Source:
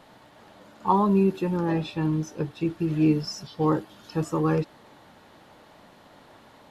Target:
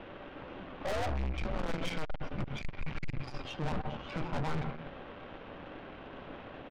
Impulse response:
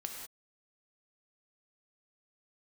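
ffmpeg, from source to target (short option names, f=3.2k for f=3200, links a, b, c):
-filter_complex "[0:a]alimiter=limit=-18dB:level=0:latency=1:release=218,highpass=f=320:t=q:w=0.5412,highpass=f=320:t=q:w=1.307,lowpass=f=3.4k:t=q:w=0.5176,lowpass=f=3.4k:t=q:w=0.7071,lowpass=f=3.4k:t=q:w=1.932,afreqshift=-320,aecho=1:1:123:0.112,asplit=2[a][b];[1:a]atrim=start_sample=2205,asetrate=34398,aresample=44100[c];[b][c]afir=irnorm=-1:irlink=0,volume=-6dB[d];[a][d]amix=inputs=2:normalize=0,aeval=exprs='(tanh(100*val(0)+0.7)-tanh(0.7))/100':c=same,volume=7.5dB"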